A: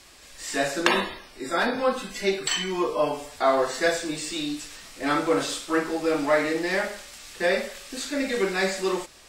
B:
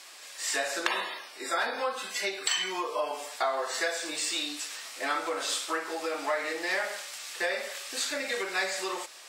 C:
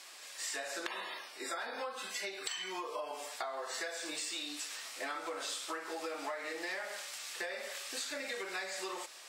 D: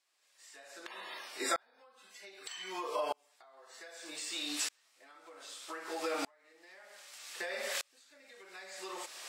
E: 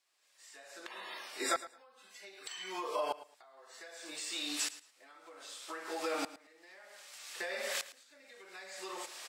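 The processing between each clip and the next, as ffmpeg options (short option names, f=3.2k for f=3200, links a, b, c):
-af "acompressor=threshold=-27dB:ratio=6,highpass=620,volume=3dB"
-af "acompressor=threshold=-33dB:ratio=6,volume=-3.5dB"
-af "aeval=exprs='val(0)*pow(10,-37*if(lt(mod(-0.64*n/s,1),2*abs(-0.64)/1000),1-mod(-0.64*n/s,1)/(2*abs(-0.64)/1000),(mod(-0.64*n/s,1)-2*abs(-0.64)/1000)/(1-2*abs(-0.64)/1000))/20)':c=same,volume=8.5dB"
-af "aecho=1:1:110|220:0.158|0.0317"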